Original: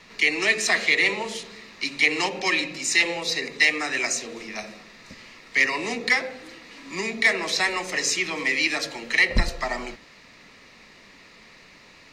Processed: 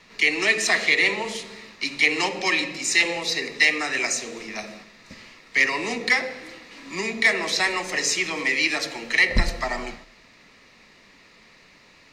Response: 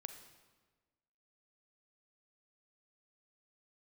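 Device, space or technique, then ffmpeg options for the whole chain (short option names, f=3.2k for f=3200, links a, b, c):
keyed gated reverb: -filter_complex "[0:a]asplit=3[a][b][c];[1:a]atrim=start_sample=2205[d];[b][d]afir=irnorm=-1:irlink=0[e];[c]apad=whole_len=534923[f];[e][f]sidechaingate=range=-10dB:threshold=-45dB:ratio=16:detection=peak,volume=4dB[g];[a][g]amix=inputs=2:normalize=0,volume=-5dB"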